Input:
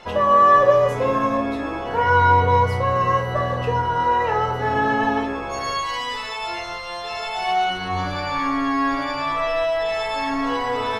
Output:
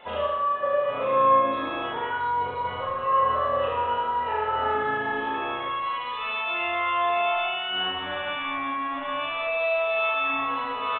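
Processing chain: tilt +2 dB/oct; limiter -21 dBFS, peak gain reduction 16 dB; on a send: flutter echo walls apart 6.4 m, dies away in 1 s; on the sum: Schroeder reverb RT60 0.68 s, combs from 26 ms, DRR -1 dB; downsampling 8000 Hz; bell 620 Hz +5.5 dB 1.8 oct; gain -7.5 dB

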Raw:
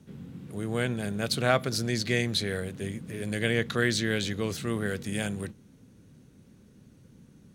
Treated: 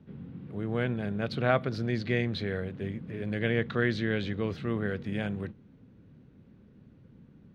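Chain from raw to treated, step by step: air absorption 340 m

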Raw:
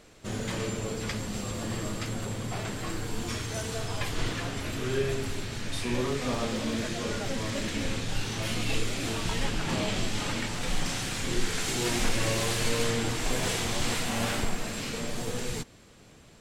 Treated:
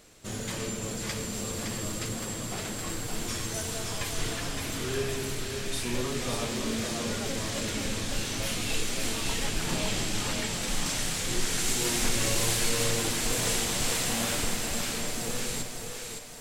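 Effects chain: high shelf 5600 Hz +11 dB; on a send: split-band echo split 360 Hz, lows 0.273 s, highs 0.564 s, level -5 dB; on the sum: gain -3 dB

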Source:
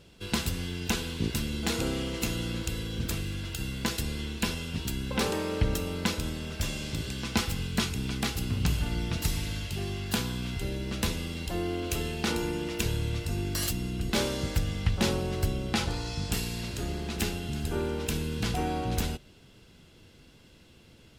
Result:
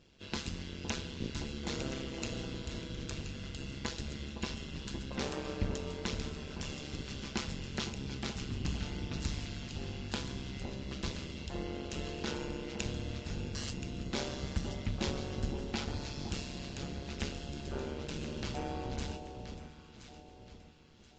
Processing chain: AM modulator 140 Hz, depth 85%; echo with dull and thin repeats by turns 0.513 s, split 1000 Hz, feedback 59%, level -6.5 dB; gain -5 dB; Vorbis 48 kbps 16000 Hz

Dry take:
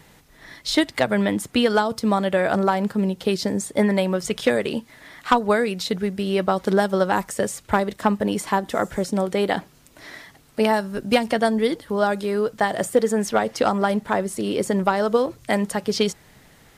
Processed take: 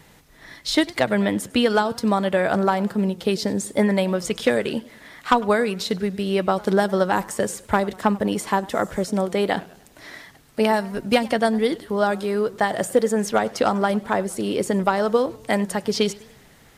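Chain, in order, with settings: warbling echo 98 ms, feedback 48%, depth 164 cents, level -21.5 dB

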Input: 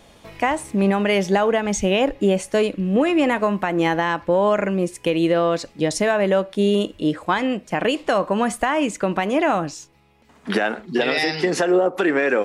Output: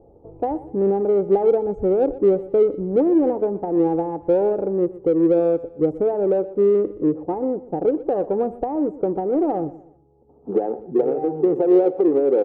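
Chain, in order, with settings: inverse Chebyshev low-pass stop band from 1700 Hz, stop band 50 dB; low shelf 75 Hz -9.5 dB; comb 2.4 ms, depth 61%; in parallel at -11 dB: soft clip -23 dBFS, distortion -8 dB; on the sum: feedback echo 0.122 s, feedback 37%, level -17.5 dB

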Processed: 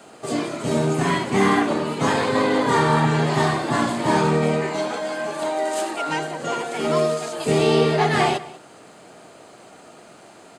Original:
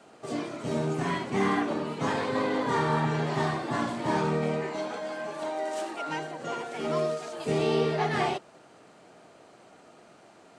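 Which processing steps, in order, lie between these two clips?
high shelf 6800 Hz +9.5 dB; notch 5700 Hz, Q 11; outdoor echo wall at 33 m, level -18 dB; gain +8 dB

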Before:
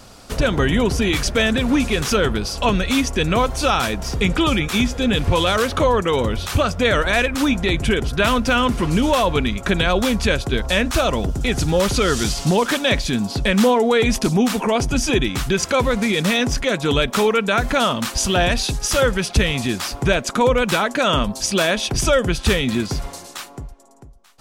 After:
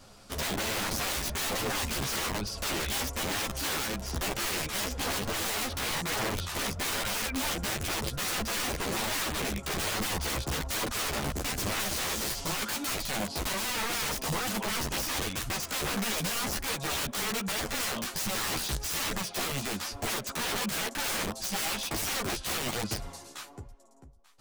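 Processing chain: wrapped overs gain 16.5 dB; chorus voices 2, 1.2 Hz, delay 12 ms, depth 3 ms; gain -7 dB

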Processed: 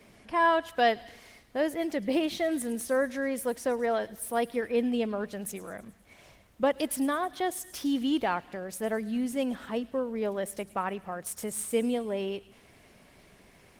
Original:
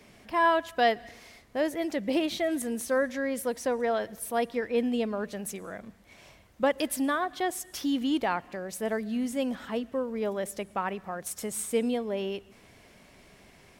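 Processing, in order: 5.82–8.14 dynamic EQ 1700 Hz, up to -3 dB, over -39 dBFS, Q 1.5; thin delay 0.106 s, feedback 60%, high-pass 2700 Hz, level -16 dB; Opus 24 kbps 48000 Hz

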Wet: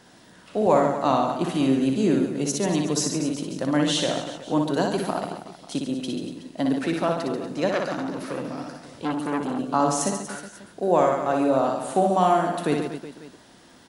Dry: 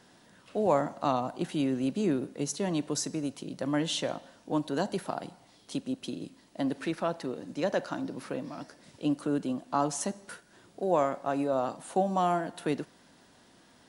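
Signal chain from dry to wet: reverse bouncing-ball echo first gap 60 ms, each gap 1.3×, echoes 5; 7.71–9.59 core saturation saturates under 1400 Hz; gain +5.5 dB

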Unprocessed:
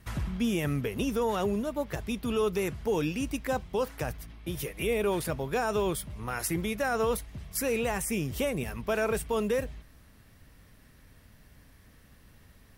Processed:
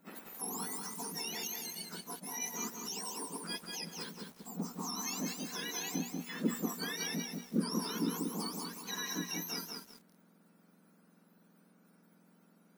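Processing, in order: spectrum mirrored in octaves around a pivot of 1600 Hz; notches 60/120/180/240 Hz; lo-fi delay 0.188 s, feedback 35%, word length 8-bit, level -3 dB; gain -7 dB

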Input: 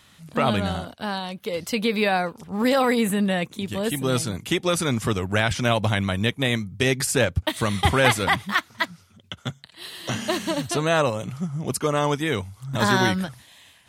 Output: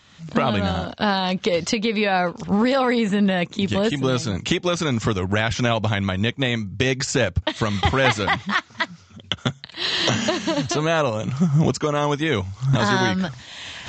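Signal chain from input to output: recorder AGC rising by 29 dB/s; downsampling 16000 Hz

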